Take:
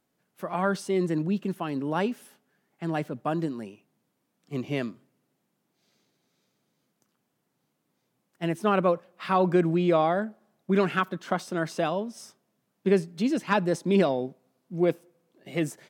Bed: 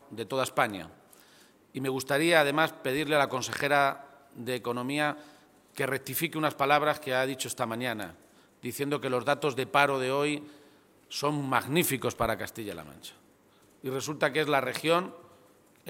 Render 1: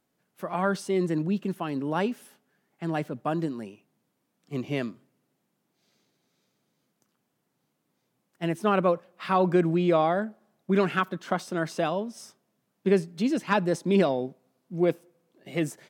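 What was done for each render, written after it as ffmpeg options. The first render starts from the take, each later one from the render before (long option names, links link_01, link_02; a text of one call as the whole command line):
ffmpeg -i in.wav -af anull out.wav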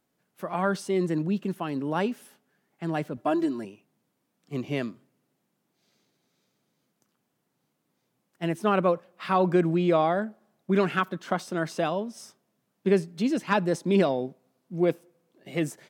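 ffmpeg -i in.wav -filter_complex "[0:a]asettb=1/sr,asplit=3[link_01][link_02][link_03];[link_01]atrim=end=3.174[link_04];[link_02]atrim=start=3.17:end=3.65,asetpts=PTS-STARTPTS,afade=type=in:duration=0.004:curve=qsin,afade=type=out:start_time=0.476:duration=0.004:curve=qsin,aecho=1:1:3:0.87,atrim=end_sample=21168[link_05];[link_03]atrim=start=3.646[link_06];[link_04][link_05]acrossfade=duration=0.004:curve1=hsin:curve2=qsin[link_07];[link_07][link_06]acrossfade=duration=0.004:curve1=qsin:curve2=hsin" out.wav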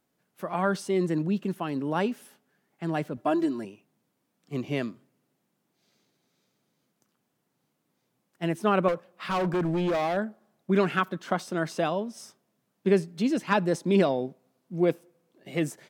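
ffmpeg -i in.wav -filter_complex "[0:a]asettb=1/sr,asplit=3[link_01][link_02][link_03];[link_01]atrim=end=8.884[link_04];[link_02]atrim=start=8.88:end=10.17,asetpts=PTS-STARTPTS,afade=type=in:duration=0.004:curve=qsin,afade=type=out:start_time=1.286:duration=0.004:curve=qsin,volume=23.5dB,asoftclip=hard,volume=-23.5dB[link_05];[link_03]atrim=start=10.166[link_06];[link_04][link_05]acrossfade=duration=0.004:curve1=hsin:curve2=qsin[link_07];[link_07][link_06]acrossfade=duration=0.004:curve1=qsin:curve2=hsin" out.wav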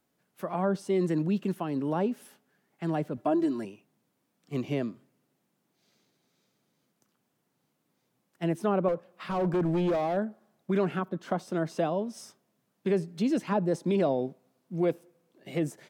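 ffmpeg -i in.wav -filter_complex "[0:a]acrossover=split=570|830[link_01][link_02][link_03];[link_01]alimiter=limit=-20.5dB:level=0:latency=1[link_04];[link_03]acompressor=threshold=-42dB:ratio=6[link_05];[link_04][link_02][link_05]amix=inputs=3:normalize=0" out.wav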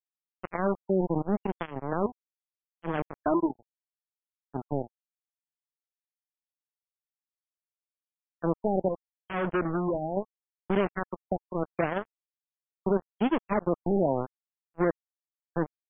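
ffmpeg -i in.wav -af "aresample=11025,acrusher=bits=3:mix=0:aa=0.5,aresample=44100,afftfilt=real='re*lt(b*sr/1024,880*pow(3500/880,0.5+0.5*sin(2*PI*0.77*pts/sr)))':imag='im*lt(b*sr/1024,880*pow(3500/880,0.5+0.5*sin(2*PI*0.77*pts/sr)))':win_size=1024:overlap=0.75" out.wav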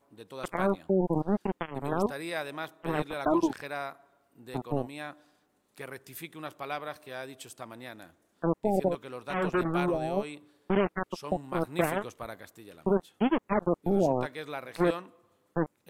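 ffmpeg -i in.wav -i bed.wav -filter_complex "[1:a]volume=-12dB[link_01];[0:a][link_01]amix=inputs=2:normalize=0" out.wav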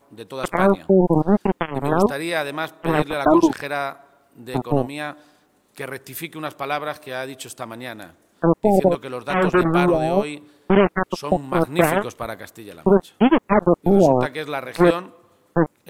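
ffmpeg -i in.wav -af "volume=11dB,alimiter=limit=-3dB:level=0:latency=1" out.wav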